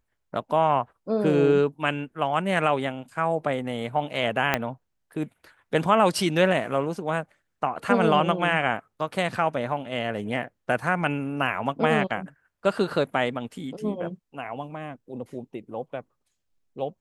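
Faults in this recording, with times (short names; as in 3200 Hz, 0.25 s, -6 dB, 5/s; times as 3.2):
4.54 pop -7 dBFS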